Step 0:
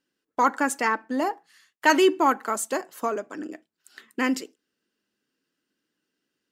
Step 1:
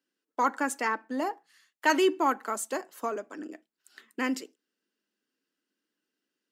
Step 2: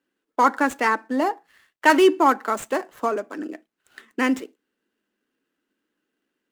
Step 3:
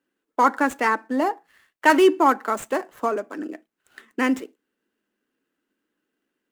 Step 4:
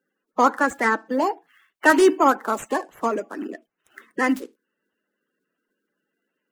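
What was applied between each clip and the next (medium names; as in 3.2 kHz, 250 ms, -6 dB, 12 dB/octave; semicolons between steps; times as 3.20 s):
high-pass 190 Hz 24 dB/octave; trim -5 dB
median filter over 9 samples; trim +8.5 dB
peaking EQ 4.3 kHz -2.5 dB 1.5 oct
coarse spectral quantiser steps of 30 dB; trim +1 dB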